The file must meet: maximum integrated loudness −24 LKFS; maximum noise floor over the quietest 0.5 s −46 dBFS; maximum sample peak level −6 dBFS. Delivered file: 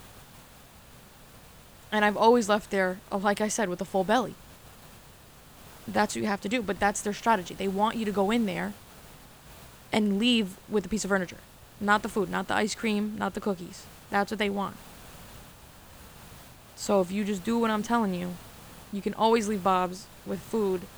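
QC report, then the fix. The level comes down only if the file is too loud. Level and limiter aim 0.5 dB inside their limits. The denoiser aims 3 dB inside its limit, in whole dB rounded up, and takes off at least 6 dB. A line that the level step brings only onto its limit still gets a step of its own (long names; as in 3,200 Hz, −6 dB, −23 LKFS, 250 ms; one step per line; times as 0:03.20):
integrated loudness −27.5 LKFS: in spec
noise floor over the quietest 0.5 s −52 dBFS: in spec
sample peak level −9.0 dBFS: in spec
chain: no processing needed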